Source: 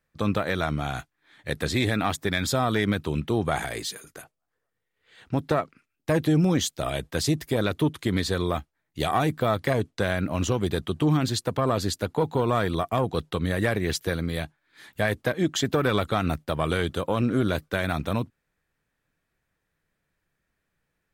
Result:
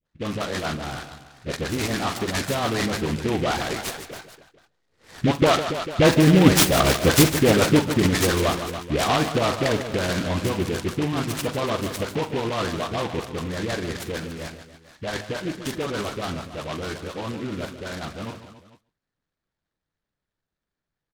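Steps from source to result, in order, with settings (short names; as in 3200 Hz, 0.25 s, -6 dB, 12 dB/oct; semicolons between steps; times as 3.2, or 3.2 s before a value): Doppler pass-by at 6.66, 6 m/s, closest 6 m; echo 0.138 s -23 dB; low-pass opened by the level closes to 2800 Hz, open at -23.5 dBFS; dispersion highs, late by 67 ms, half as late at 890 Hz; on a send: tapped delay 44/72/149/282/444 ms -10.5/-16.5/-10.5/-14/-19 dB; on the sum: harmonic-percussive split percussive +7 dB; in parallel at +2 dB: compressor, threshold -32 dBFS, peak gain reduction 18 dB; on the sum: noise-modulated delay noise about 2100 Hz, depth 0.082 ms; gain +3 dB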